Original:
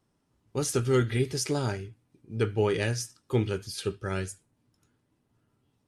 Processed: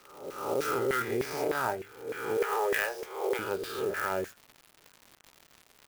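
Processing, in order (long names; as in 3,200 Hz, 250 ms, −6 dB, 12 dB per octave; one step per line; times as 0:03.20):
peak hold with a rise ahead of every peak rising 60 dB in 1.16 s
0:02.37–0:03.39: Butterworth high-pass 370 Hz 72 dB per octave
auto-filter band-pass saw down 3.3 Hz 470–2,000 Hz
surface crackle 260 per second −48 dBFS
in parallel at +1.5 dB: compressor whose output falls as the input rises −37 dBFS, ratio −1
on the sum: converter with an unsteady clock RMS 0.027 ms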